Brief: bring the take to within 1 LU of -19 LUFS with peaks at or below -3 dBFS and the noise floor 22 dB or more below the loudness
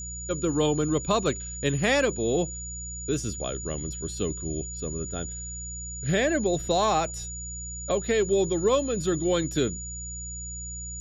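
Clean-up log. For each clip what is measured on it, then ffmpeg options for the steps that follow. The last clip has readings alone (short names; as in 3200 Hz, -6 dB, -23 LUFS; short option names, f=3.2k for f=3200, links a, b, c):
hum 60 Hz; harmonics up to 180 Hz; hum level -37 dBFS; steady tone 6900 Hz; tone level -36 dBFS; loudness -27.5 LUFS; peak -11.5 dBFS; loudness target -19.0 LUFS
-> -af "bandreject=f=60:t=h:w=4,bandreject=f=120:t=h:w=4,bandreject=f=180:t=h:w=4"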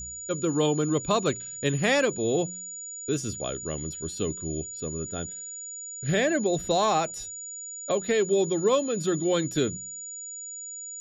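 hum none; steady tone 6900 Hz; tone level -36 dBFS
-> -af "bandreject=f=6.9k:w=30"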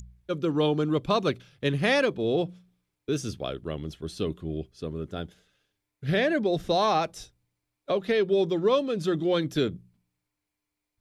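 steady tone none; loudness -27.5 LUFS; peak -12.5 dBFS; loudness target -19.0 LUFS
-> -af "volume=8.5dB"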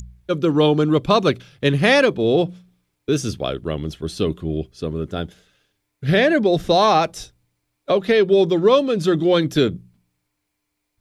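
loudness -19.0 LUFS; peak -4.0 dBFS; noise floor -76 dBFS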